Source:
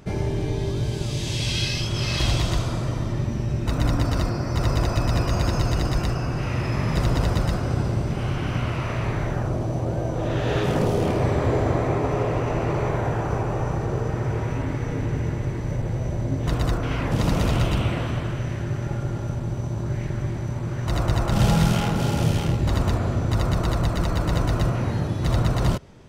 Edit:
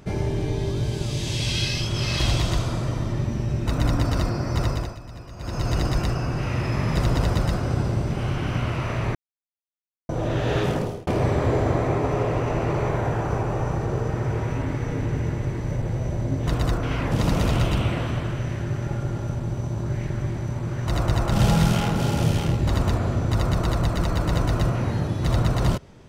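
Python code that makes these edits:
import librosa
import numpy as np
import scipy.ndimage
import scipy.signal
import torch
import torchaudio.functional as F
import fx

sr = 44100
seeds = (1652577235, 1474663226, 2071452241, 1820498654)

y = fx.edit(x, sr, fx.fade_down_up(start_s=4.59, length_s=1.17, db=-17.5, fade_s=0.39),
    fx.silence(start_s=9.15, length_s=0.94),
    fx.fade_out_span(start_s=10.65, length_s=0.42), tone=tone)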